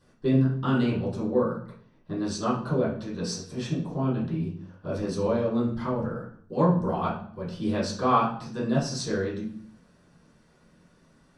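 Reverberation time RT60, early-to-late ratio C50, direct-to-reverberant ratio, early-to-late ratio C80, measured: 0.55 s, 5.5 dB, -12.0 dB, 9.5 dB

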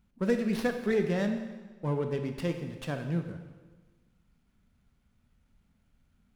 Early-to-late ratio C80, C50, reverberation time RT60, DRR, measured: 9.0 dB, 7.5 dB, 1.3 s, 5.5 dB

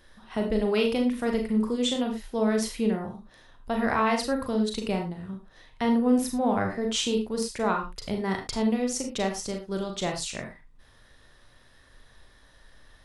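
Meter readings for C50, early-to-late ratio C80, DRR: 7.5 dB, 12.0 dB, 2.5 dB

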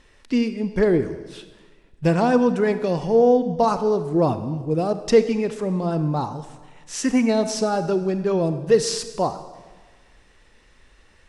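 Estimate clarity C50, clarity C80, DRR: 11.5 dB, 13.0 dB, 10.5 dB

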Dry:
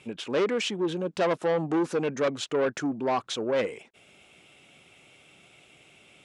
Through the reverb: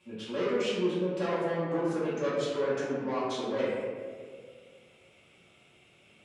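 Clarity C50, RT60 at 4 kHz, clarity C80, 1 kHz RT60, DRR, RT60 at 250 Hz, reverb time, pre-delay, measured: -1.5 dB, 0.95 s, 1.0 dB, 1.6 s, -12.0 dB, 2.0 s, 1.9 s, 3 ms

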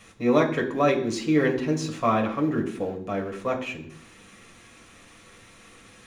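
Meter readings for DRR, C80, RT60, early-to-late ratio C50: 0.0 dB, 13.5 dB, 0.65 s, 10.5 dB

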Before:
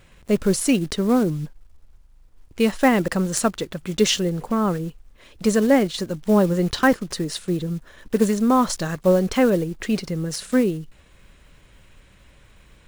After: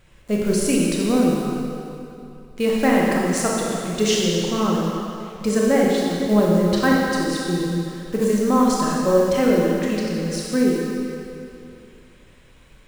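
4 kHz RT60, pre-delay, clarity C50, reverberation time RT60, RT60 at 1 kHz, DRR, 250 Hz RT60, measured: 2.3 s, 23 ms, -2.0 dB, 2.7 s, 2.8 s, -3.5 dB, 2.5 s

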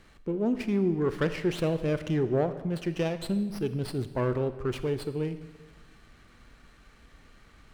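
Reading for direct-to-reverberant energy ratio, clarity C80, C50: 11.0 dB, 13.5 dB, 12.0 dB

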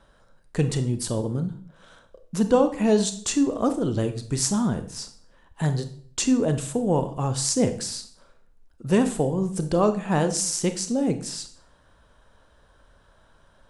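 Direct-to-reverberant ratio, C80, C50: 9.0 dB, 16.0 dB, 12.0 dB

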